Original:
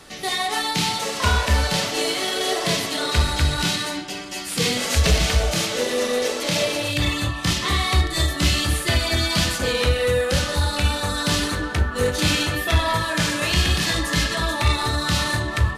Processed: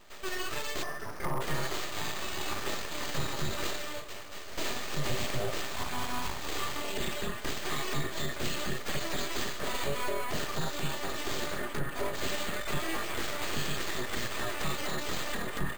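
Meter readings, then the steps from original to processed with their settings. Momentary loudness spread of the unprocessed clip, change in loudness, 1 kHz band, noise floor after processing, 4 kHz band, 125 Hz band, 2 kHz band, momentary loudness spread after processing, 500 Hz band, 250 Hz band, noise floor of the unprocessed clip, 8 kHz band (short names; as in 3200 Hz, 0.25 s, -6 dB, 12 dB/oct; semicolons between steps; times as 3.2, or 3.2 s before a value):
3 LU, -13.5 dB, -11.0 dB, -39 dBFS, -15.0 dB, -17.5 dB, -12.0 dB, 3 LU, -12.5 dB, -13.0 dB, -30 dBFS, -12.5 dB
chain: spectral delete 0.83–1.41, 1300–5600 Hz; full-wave rectifier; careless resampling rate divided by 4×, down filtered, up hold; small resonant body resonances 390/590/1200/1800 Hz, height 7 dB; limiter -12.5 dBFS, peak gain reduction 4.5 dB; gain -8.5 dB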